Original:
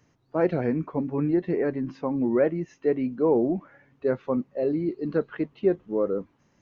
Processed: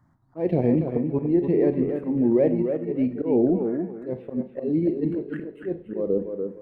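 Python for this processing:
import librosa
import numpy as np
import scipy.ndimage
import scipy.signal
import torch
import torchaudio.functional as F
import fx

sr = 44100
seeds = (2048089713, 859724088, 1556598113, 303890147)

p1 = scipy.signal.medfilt(x, 9)
p2 = fx.high_shelf(p1, sr, hz=2700.0, db=-10.0)
p3 = fx.level_steps(p2, sr, step_db=14)
p4 = p2 + (p3 * librosa.db_to_amplitude(2.0))
p5 = fx.env_phaser(p4, sr, low_hz=450.0, high_hz=1400.0, full_db=-19.0)
p6 = fx.auto_swell(p5, sr, attack_ms=160.0)
p7 = fx.echo_tape(p6, sr, ms=288, feedback_pct=29, wet_db=-5.0, lp_hz=3300.0, drive_db=8.0, wow_cents=21)
y = fx.rev_schroeder(p7, sr, rt60_s=0.42, comb_ms=33, drr_db=11.5)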